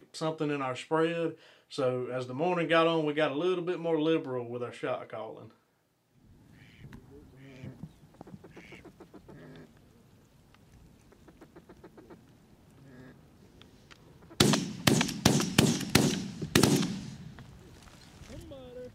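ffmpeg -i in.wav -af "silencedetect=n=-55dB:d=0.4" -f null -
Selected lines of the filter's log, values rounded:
silence_start: 5.54
silence_end: 6.18 | silence_duration: 0.64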